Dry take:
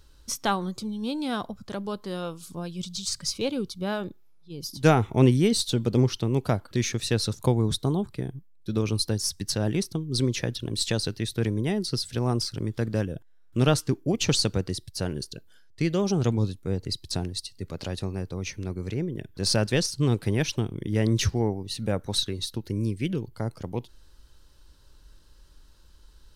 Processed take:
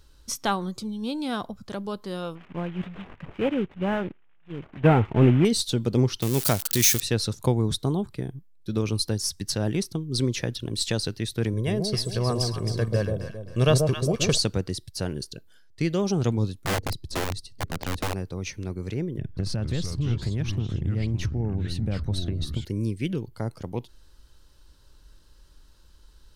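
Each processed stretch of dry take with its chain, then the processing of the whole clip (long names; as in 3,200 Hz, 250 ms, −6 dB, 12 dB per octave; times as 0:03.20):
0:02.35–0:05.45: variable-slope delta modulation 16 kbit/s + leveller curve on the samples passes 1
0:06.22–0:07.00: spike at every zero crossing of −22.5 dBFS + high-shelf EQ 2,200 Hz +9.5 dB
0:11.53–0:14.38: comb filter 1.8 ms, depth 54% + delay that swaps between a low-pass and a high-pass 134 ms, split 860 Hz, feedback 59%, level −3.5 dB
0:16.65–0:18.14: tilt shelving filter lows +7.5 dB, about 760 Hz + wrap-around overflow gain 21.5 dB
0:19.18–0:22.65: bass and treble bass +12 dB, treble −8 dB + downward compressor 8 to 1, threshold −24 dBFS + delay with pitch and tempo change per echo 201 ms, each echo −4 semitones, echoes 2, each echo −6 dB
whole clip: no processing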